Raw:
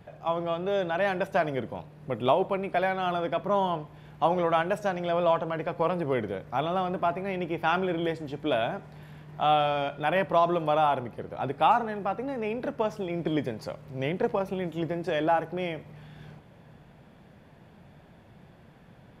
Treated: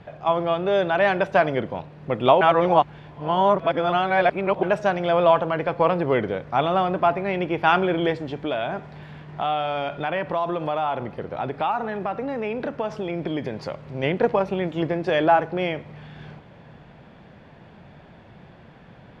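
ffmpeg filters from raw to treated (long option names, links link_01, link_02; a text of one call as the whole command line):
ffmpeg -i in.wav -filter_complex "[0:a]asettb=1/sr,asplit=3[link_01][link_02][link_03];[link_01]atrim=end=8.154[link_04];[link_02]atrim=start=8.15:end=14.03,asetpts=PTS-STARTPTS,afade=type=in:duration=0.004:curve=qsin,afade=type=out:start_time=5.876:duration=0.004:curve=qsin,acompressor=threshold=-30dB:ratio=3:attack=3.2:release=140:knee=1:detection=peak[link_05];[link_03]atrim=start=14.026[link_06];[link_04][link_05]acrossfade=duration=0.004:curve1=hsin:curve2=qsin[link_07];[link_07][link_06]acrossfade=duration=0.004:curve1=qsin:curve2=hsin,asplit=3[link_08][link_09][link_10];[link_08]atrim=end=2.412[link_11];[link_09]atrim=start=2.408:end=4.632,asetpts=PTS-STARTPTS,areverse[link_12];[link_10]atrim=start=4.628[link_13];[link_11][link_12]acrossfade=duration=0.004:curve1=hsin:curve2=hsin[link_14];[link_14][link_13]acrossfade=duration=0.004:curve1=hsin:curve2=hsin,lowpass=4500,lowshelf=frequency=430:gain=-3,volume=8dB" out.wav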